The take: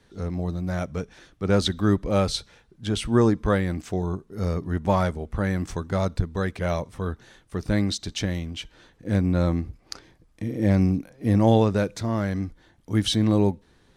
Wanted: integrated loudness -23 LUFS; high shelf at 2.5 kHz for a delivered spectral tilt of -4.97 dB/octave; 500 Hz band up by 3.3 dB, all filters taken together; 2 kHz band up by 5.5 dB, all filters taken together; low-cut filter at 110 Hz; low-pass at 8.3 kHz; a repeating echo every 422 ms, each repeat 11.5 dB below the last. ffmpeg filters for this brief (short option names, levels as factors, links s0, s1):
-af "highpass=110,lowpass=8300,equalizer=f=500:t=o:g=3.5,equalizer=f=2000:t=o:g=3,highshelf=f=2500:g=9,aecho=1:1:422|844|1266:0.266|0.0718|0.0194,volume=1.06"